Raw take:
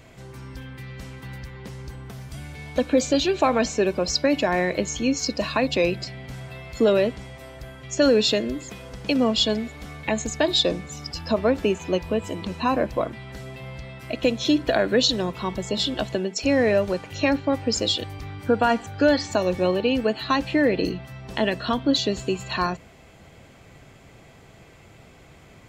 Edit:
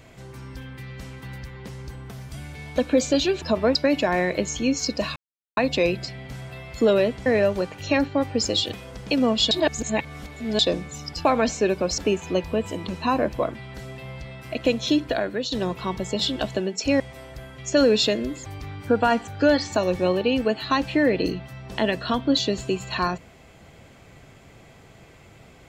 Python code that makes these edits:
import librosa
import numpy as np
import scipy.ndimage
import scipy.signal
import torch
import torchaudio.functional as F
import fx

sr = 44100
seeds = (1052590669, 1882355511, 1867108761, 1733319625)

y = fx.edit(x, sr, fx.swap(start_s=3.42, length_s=0.73, other_s=11.23, other_length_s=0.33),
    fx.insert_silence(at_s=5.56, length_s=0.41),
    fx.swap(start_s=7.25, length_s=1.46, other_s=16.58, other_length_s=1.47),
    fx.reverse_span(start_s=9.49, length_s=1.08),
    fx.fade_out_to(start_s=14.44, length_s=0.66, floor_db=-12.0), tone=tone)